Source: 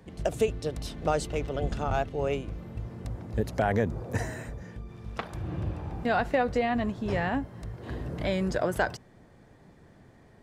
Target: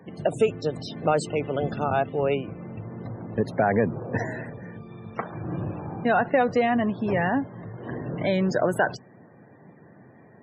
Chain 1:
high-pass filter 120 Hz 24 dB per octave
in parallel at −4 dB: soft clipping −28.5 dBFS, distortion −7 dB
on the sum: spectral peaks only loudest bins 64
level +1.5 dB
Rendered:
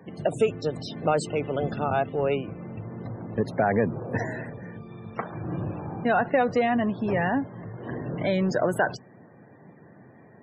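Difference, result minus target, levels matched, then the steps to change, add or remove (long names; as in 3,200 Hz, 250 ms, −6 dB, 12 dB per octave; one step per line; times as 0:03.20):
soft clipping: distortion +6 dB
change: soft clipping −21.5 dBFS, distortion −14 dB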